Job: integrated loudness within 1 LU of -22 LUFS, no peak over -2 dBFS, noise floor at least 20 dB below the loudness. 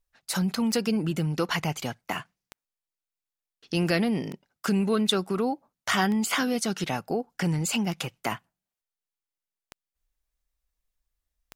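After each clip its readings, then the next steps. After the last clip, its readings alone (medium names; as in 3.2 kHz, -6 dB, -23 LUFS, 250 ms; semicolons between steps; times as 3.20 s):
clicks found 7; loudness -27.5 LUFS; peak level -8.0 dBFS; loudness target -22.0 LUFS
-> de-click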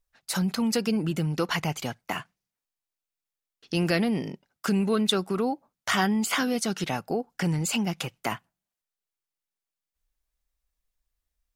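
clicks found 0; loudness -27.5 LUFS; peak level -8.0 dBFS; loudness target -22.0 LUFS
-> trim +5.5 dB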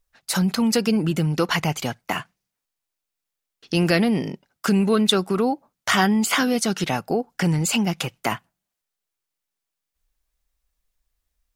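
loudness -22.0 LUFS; peak level -2.5 dBFS; noise floor -84 dBFS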